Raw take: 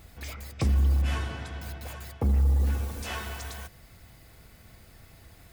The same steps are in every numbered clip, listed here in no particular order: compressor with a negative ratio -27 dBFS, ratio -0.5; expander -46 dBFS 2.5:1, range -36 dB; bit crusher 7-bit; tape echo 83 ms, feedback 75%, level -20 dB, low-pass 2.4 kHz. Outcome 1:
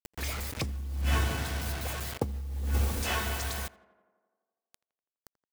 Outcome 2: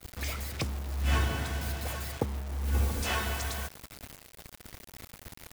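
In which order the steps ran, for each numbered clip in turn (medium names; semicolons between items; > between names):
expander > bit crusher > tape echo > compressor with a negative ratio; tape echo > compressor with a negative ratio > bit crusher > expander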